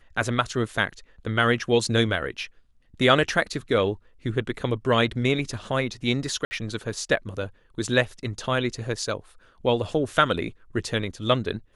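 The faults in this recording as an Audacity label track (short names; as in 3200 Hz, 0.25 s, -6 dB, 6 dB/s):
6.450000	6.510000	gap 60 ms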